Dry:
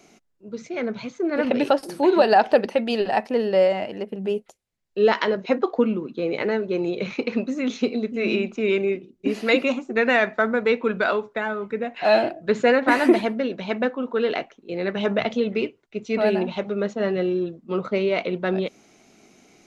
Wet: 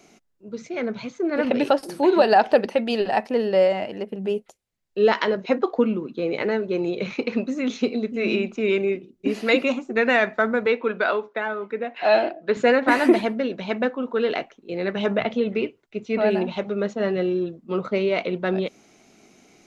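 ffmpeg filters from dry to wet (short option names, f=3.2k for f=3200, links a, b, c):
-filter_complex "[0:a]asettb=1/sr,asplit=3[a][b][c];[a]atrim=end=10.664[d];[b]atrim=start=10.66:end=12.57,asetpts=PTS-STARTPTS,afade=t=in:d=0.004:c=qsin,afade=t=out:st=1.906:d=0.004:c=qsin,highpass=270,lowpass=4.7k[e];[c]atrim=start=12.566[f];[d][e]acrossfade=d=0.004:c1=hsin:c2=qsin[g];[g][f]acrossfade=d=0.004:c1=qsin:c2=hsin,asettb=1/sr,asplit=3[h][i][j];[h]atrim=end=15.174[k];[i]atrim=start=15.17:end=16.31,asetpts=PTS-STARTPTS,afade=t=in:d=0.004:c=qsin,afade=t=out:st=1.136:d=0.004:c=qsin,acrossover=split=3800[l][m];[m]acompressor=threshold=-54dB:ratio=4:attack=1:release=60[n];[l][n]amix=inputs=2:normalize=0[o];[j]atrim=start=16.306[p];[k][o]acrossfade=d=0.004:c1=hsin:c2=qsin[q];[q][p]acrossfade=d=0.004:c1=qsin:c2=hsin"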